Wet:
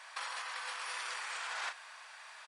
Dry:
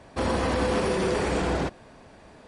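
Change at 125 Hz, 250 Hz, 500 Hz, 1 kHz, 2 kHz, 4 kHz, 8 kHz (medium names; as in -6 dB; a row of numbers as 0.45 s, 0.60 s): under -40 dB, under -40 dB, -30.5 dB, -11.5 dB, -6.0 dB, -5.5 dB, -5.5 dB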